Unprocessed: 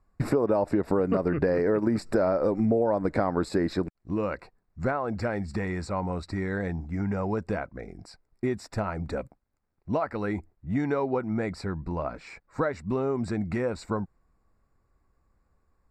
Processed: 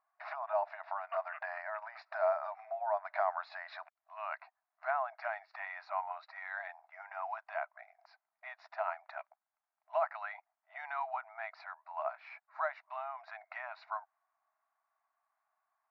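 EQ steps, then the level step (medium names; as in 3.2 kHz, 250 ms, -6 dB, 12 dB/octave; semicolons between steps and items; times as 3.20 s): dynamic bell 3.1 kHz, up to +3 dB, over -47 dBFS, Q 1.3; brick-wall FIR band-pass 610–6900 Hz; distance through air 420 m; -1.0 dB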